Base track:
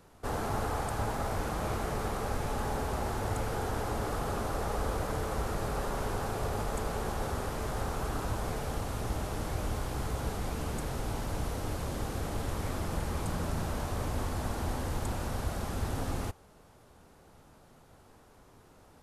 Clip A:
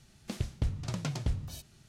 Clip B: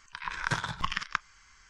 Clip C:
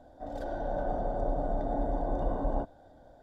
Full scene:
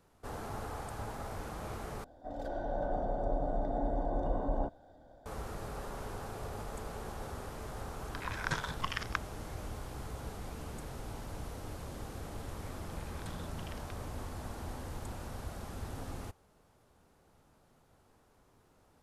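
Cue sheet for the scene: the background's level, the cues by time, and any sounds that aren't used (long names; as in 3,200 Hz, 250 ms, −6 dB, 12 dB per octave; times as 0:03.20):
base track −8.5 dB
0:02.04: overwrite with C −2.5 dB
0:08.00: mix in B −5 dB
0:12.75: mix in B −16 dB + resonant band-pass 3,400 Hz, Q 1.5
not used: A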